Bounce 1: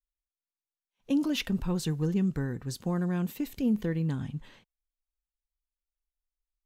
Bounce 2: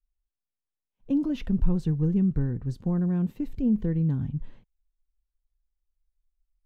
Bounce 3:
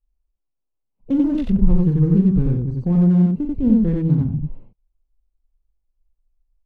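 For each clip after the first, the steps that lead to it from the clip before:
tilt -4 dB/oct; gain -5.5 dB
Wiener smoothing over 25 samples; loudspeakers at several distances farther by 14 m -7 dB, 31 m -1 dB; gain +6 dB; Vorbis 64 kbps 32000 Hz

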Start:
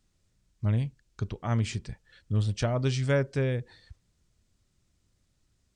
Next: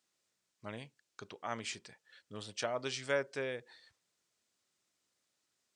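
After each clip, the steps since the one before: Bessel high-pass 580 Hz, order 2; gain -2.5 dB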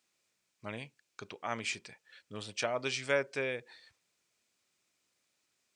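bell 2400 Hz +7 dB 0.26 oct; gain +2.5 dB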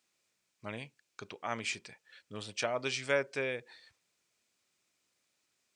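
nothing audible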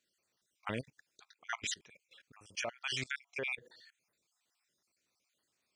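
random spectral dropouts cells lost 49%; level quantiser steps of 23 dB; gain +9 dB

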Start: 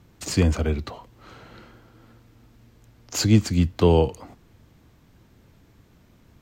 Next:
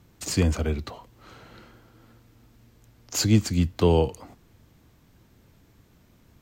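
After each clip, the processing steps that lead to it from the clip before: high shelf 6300 Hz +5.5 dB; gain -2.5 dB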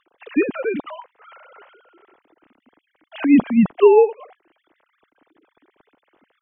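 sine-wave speech; gain +6.5 dB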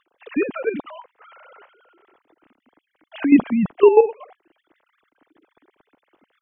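level quantiser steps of 10 dB; gain +2.5 dB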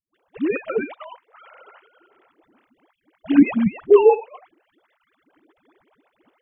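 dispersion highs, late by 0.146 s, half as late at 360 Hz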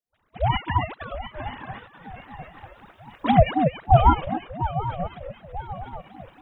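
recorder AGC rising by 6.3 dB/s; swung echo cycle 0.937 s, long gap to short 3:1, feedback 43%, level -11.5 dB; ring modulator with a swept carrier 400 Hz, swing 35%, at 3.9 Hz

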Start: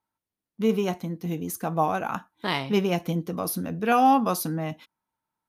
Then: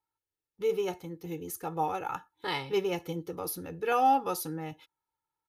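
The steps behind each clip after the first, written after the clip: comb 2.3 ms, depth 91%; gain -8 dB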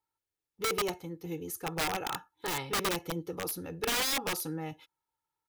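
wrapped overs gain 25 dB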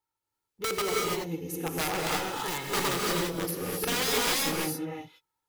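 non-linear reverb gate 0.36 s rising, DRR -2 dB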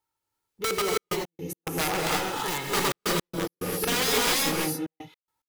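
step gate "xxxxxxx.x.x.xx" 108 bpm -60 dB; gain +3 dB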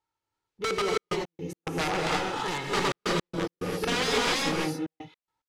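air absorption 81 m

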